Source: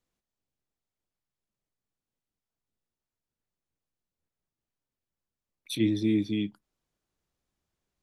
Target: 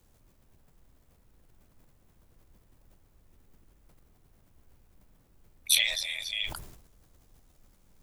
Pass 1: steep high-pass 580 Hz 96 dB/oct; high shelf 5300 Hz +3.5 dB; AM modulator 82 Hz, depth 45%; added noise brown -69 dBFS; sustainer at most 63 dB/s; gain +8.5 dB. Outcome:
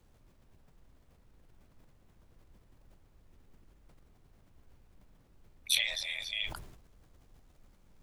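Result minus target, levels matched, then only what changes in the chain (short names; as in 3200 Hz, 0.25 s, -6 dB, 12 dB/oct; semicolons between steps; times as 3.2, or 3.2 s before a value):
8000 Hz band -3.5 dB
change: high shelf 5300 Hz +15 dB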